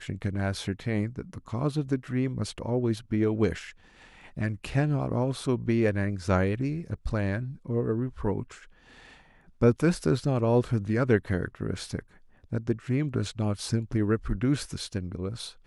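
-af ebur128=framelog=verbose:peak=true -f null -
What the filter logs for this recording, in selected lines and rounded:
Integrated loudness:
  I:         -28.7 LUFS
  Threshold: -39.2 LUFS
Loudness range:
  LRA:         3.5 LU
  Threshold: -49.0 LUFS
  LRA low:   -30.6 LUFS
  LRA high:  -27.1 LUFS
True peak:
  Peak:       -9.3 dBFS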